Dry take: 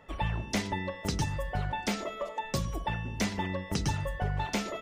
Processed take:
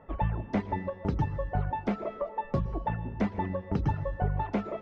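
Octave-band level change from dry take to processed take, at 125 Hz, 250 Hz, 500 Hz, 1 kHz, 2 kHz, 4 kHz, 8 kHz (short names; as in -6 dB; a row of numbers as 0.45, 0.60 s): +2.0 dB, +2.5 dB, +2.5 dB, +1.5 dB, -6.5 dB, -17.0 dB, under -25 dB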